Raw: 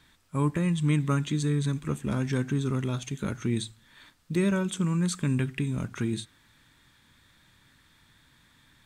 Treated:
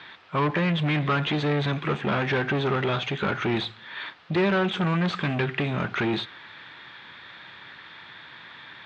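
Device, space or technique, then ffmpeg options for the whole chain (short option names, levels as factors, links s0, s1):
overdrive pedal into a guitar cabinet: -filter_complex "[0:a]asplit=2[s0][s1];[s1]highpass=f=720:p=1,volume=28.2,asoftclip=type=tanh:threshold=0.224[s2];[s0][s2]amix=inputs=2:normalize=0,lowpass=f=4400:p=1,volume=0.501,highpass=82,equalizer=f=260:t=q:w=4:g=-7,equalizer=f=390:t=q:w=4:g=3,equalizer=f=750:t=q:w=4:g=3,lowpass=f=3700:w=0.5412,lowpass=f=3700:w=1.3066,volume=0.75"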